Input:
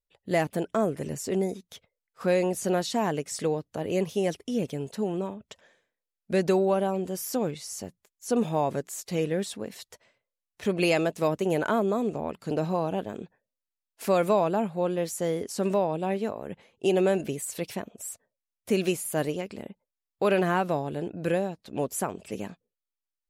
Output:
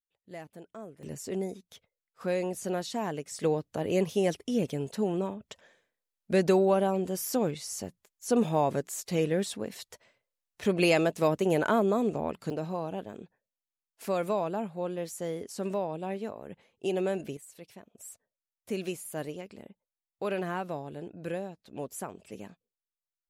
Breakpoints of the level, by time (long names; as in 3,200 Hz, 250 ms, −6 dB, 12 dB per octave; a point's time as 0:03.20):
−18.5 dB
from 0:01.03 −6 dB
from 0:03.43 0 dB
from 0:12.50 −6.5 dB
from 0:17.37 −16 dB
from 0:17.95 −8.5 dB